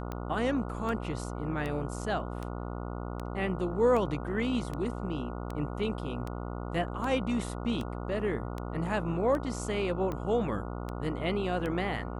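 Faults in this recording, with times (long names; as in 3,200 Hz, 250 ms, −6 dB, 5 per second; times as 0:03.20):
mains buzz 60 Hz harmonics 24 −37 dBFS
scratch tick 78 rpm −23 dBFS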